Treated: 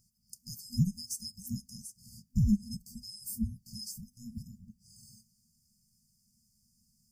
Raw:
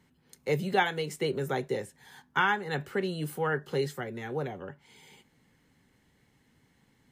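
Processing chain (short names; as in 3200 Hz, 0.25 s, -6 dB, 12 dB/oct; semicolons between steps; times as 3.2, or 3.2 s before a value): band inversion scrambler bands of 1000 Hz; FFT band-reject 240–4500 Hz; gain +6.5 dB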